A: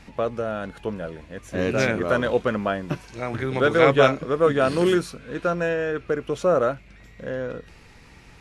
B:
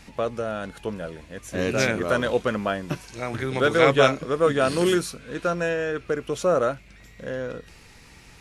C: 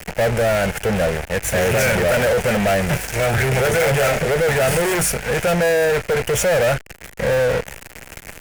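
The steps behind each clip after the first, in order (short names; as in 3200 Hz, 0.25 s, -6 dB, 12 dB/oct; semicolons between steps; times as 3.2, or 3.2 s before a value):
high shelf 4300 Hz +10 dB; gain -1.5 dB
fuzz box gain 34 dB, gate -42 dBFS; fixed phaser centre 1100 Hz, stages 6; power-law curve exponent 0.5; gain -3.5 dB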